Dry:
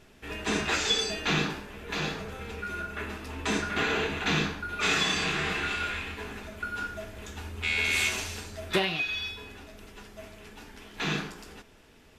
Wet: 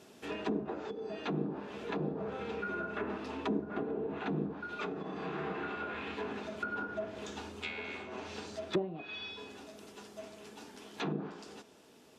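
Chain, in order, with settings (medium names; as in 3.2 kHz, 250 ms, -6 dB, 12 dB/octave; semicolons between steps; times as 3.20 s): high-pass 210 Hz 12 dB/octave; gain riding within 4 dB 0.5 s; peaking EQ 2 kHz -9 dB 1.3 oct; low-pass that closes with the level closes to 450 Hz, closed at -28.5 dBFS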